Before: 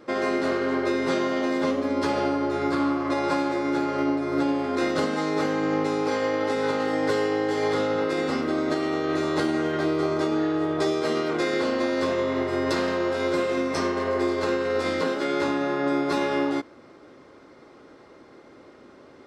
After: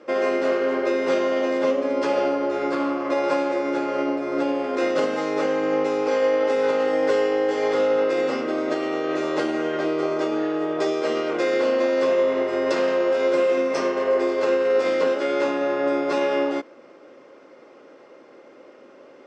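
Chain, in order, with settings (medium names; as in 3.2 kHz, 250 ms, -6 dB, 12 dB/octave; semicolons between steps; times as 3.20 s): cabinet simulation 240–7600 Hz, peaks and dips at 540 Hz +8 dB, 2.7 kHz +5 dB, 4 kHz -6 dB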